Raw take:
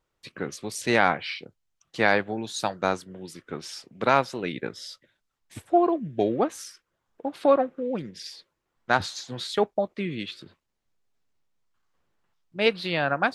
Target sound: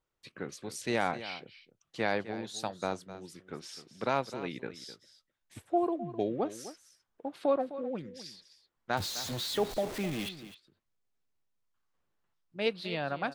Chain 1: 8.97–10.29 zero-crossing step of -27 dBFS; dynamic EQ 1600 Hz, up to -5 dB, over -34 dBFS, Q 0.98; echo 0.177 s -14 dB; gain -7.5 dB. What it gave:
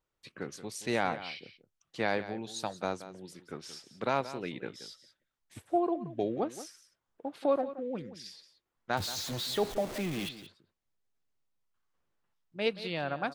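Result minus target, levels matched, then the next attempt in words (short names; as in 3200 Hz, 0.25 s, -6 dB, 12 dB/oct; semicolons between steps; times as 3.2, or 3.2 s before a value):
echo 80 ms early
8.97–10.29 zero-crossing step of -27 dBFS; dynamic EQ 1600 Hz, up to -5 dB, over -34 dBFS, Q 0.98; echo 0.257 s -14 dB; gain -7.5 dB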